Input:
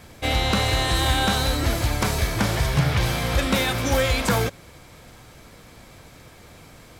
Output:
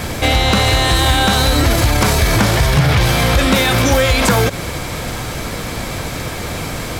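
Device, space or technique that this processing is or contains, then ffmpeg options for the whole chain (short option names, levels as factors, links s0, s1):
loud club master: -af "acompressor=threshold=0.0631:ratio=2.5,asoftclip=type=hard:threshold=0.126,alimiter=level_in=23.7:limit=0.891:release=50:level=0:latency=1,volume=0.596"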